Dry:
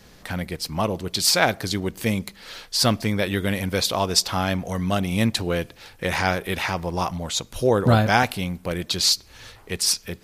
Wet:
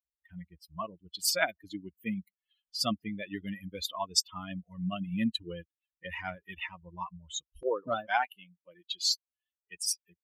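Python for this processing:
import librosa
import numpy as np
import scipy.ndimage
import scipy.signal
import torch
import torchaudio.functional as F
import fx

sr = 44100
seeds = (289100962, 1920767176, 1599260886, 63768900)

y = fx.bin_expand(x, sr, power=3.0)
y = fx.highpass(y, sr, hz=fx.steps((0.0, 60.0), (7.63, 520.0), (9.11, 210.0)), slope=12)
y = F.gain(torch.from_numpy(y), -3.5).numpy()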